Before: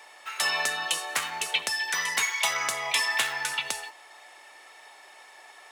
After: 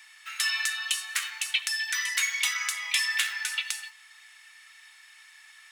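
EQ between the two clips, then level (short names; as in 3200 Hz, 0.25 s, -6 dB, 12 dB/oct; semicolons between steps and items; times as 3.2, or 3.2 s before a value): HPF 1500 Hz 24 dB/oct; 0.0 dB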